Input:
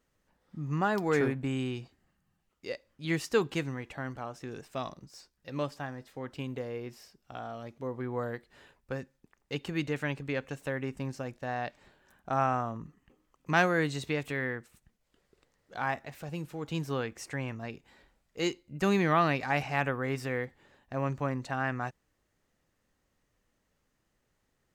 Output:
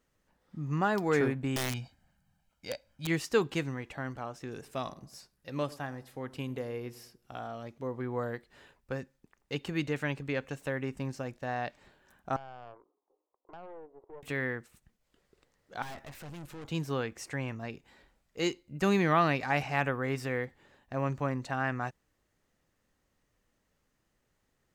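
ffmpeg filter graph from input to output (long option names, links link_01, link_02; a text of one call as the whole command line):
ffmpeg -i in.wav -filter_complex "[0:a]asettb=1/sr,asplit=3[link_01][link_02][link_03];[link_01]atrim=end=1.564[link_04];[link_02]atrim=start=1.56:end=3.07,asetpts=PTS-STARTPTS,afade=type=in:duration=0.004:curve=qsin,afade=type=out:start_time=1.506:duration=0.004:curve=qsin,aecho=1:1:1.3:0.77,atrim=end_sample=66591,aeval=exprs='(mod(20*val(0)+1,2)-1)/20':channel_layout=same[link_05];[link_03]atrim=start=3.066[link_06];[link_04][link_05]acrossfade=duration=0.004:curve1=hsin:curve2=qsin[link_07];[link_07][link_06]acrossfade=duration=0.004:curve1=qsin:curve2=hsin,asettb=1/sr,asplit=3[link_08][link_09][link_10];[link_08]atrim=end=4.524[link_11];[link_09]atrim=start=4.52:end=7.48,asetpts=PTS-STARTPTS,afade=type=in:duration=0.004:curve=qsin,afade=type=out:start_time=2.956:duration=0.004:curve=qsin,equalizer=frequency=11000:width=2.5:gain=10.5,asplit=2[link_12][link_13];[link_13]adelay=100,lowpass=frequency=1100:poles=1,volume=-18dB,asplit=2[link_14][link_15];[link_15]adelay=100,lowpass=frequency=1100:poles=1,volume=0.43,asplit=2[link_16][link_17];[link_17]adelay=100,lowpass=frequency=1100:poles=1,volume=0.43,asplit=2[link_18][link_19];[link_19]adelay=100,lowpass=frequency=1100:poles=1,volume=0.43[link_20];[link_12][link_14][link_16][link_18][link_20]amix=inputs=5:normalize=0,atrim=end_sample=130536[link_21];[link_10]atrim=start=7.476[link_22];[link_11][link_21]acrossfade=duration=0.004:curve1=hsin:curve2=qsin[link_23];[link_23][link_22]acrossfade=duration=0.004:curve1=qsin:curve2=hsin,asettb=1/sr,asplit=3[link_24][link_25][link_26];[link_24]atrim=end=12.364[link_27];[link_25]atrim=start=12.36:end=14.23,asetpts=PTS-STARTPTS,afade=type=in:duration=0.004:curve=qsin,afade=type=out:start_time=1.866:duration=0.004:curve=qsin,acompressor=threshold=-33dB:ratio=12:attack=3.2:release=140:knee=1:detection=peak,asuperpass=centerf=610:order=8:qfactor=0.93,aeval=exprs='(tanh(112*val(0)+0.8)-tanh(0.8))/112':channel_layout=same[link_28];[link_26]atrim=start=14.226[link_29];[link_27][link_28]acrossfade=duration=0.004:curve1=hsin:curve2=qsin[link_30];[link_30][link_29]acrossfade=duration=0.004:curve1=qsin:curve2=hsin,asettb=1/sr,asplit=3[link_31][link_32][link_33];[link_31]atrim=end=15.824[link_34];[link_32]atrim=start=15.82:end=16.66,asetpts=PTS-STARTPTS,afade=type=in:duration=0.004:curve=qsin,afade=type=out:start_time=0.836:duration=0.004:curve=qsin,asubboost=boost=10.5:cutoff=86,acontrast=36,aeval=exprs='(tanh(126*val(0)+0.6)-tanh(0.6))/126':channel_layout=same[link_35];[link_33]atrim=start=16.656[link_36];[link_34][link_35]acrossfade=duration=0.004:curve1=hsin:curve2=qsin[link_37];[link_37][link_36]acrossfade=duration=0.004:curve1=qsin:curve2=hsin" out.wav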